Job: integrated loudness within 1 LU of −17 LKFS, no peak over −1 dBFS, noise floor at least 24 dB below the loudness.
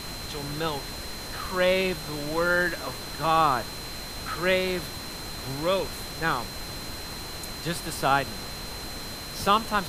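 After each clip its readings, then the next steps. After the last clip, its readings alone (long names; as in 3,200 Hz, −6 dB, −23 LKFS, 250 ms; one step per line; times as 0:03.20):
interfering tone 4,100 Hz; level of the tone −40 dBFS; background noise floor −37 dBFS; target noise floor −52 dBFS; integrated loudness −28.0 LKFS; sample peak −7.0 dBFS; target loudness −17.0 LKFS
→ notch filter 4,100 Hz, Q 30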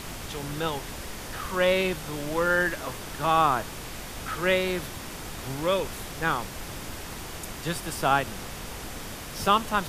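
interfering tone none found; background noise floor −39 dBFS; target noise floor −53 dBFS
→ noise reduction from a noise print 14 dB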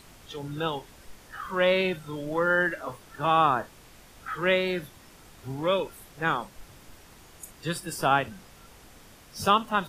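background noise floor −53 dBFS; integrated loudness −27.0 LKFS; sample peak −7.0 dBFS; target loudness −17.0 LKFS
→ level +10 dB
brickwall limiter −1 dBFS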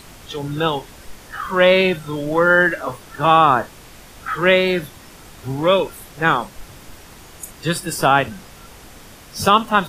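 integrated loudness −17.5 LKFS; sample peak −1.0 dBFS; background noise floor −43 dBFS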